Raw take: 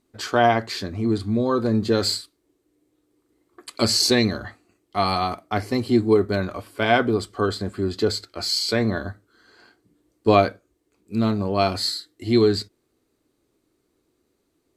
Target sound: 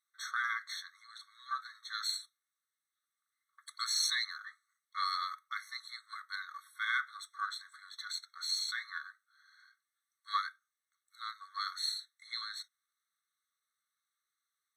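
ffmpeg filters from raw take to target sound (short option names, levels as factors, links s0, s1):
-af "aeval=exprs='if(lt(val(0),0),0.708*val(0),val(0))':c=same,afftfilt=real='re*eq(mod(floor(b*sr/1024/1100),2),1)':imag='im*eq(mod(floor(b*sr/1024/1100),2),1)':win_size=1024:overlap=0.75,volume=0.473"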